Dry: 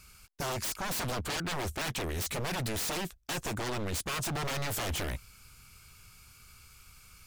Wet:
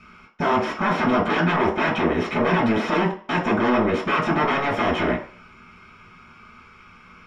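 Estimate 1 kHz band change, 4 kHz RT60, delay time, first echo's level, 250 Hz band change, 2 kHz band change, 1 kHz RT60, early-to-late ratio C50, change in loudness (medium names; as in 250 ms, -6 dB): +16.0 dB, 0.45 s, no echo, no echo, +18.0 dB, +13.5 dB, 0.50 s, 7.5 dB, +12.5 dB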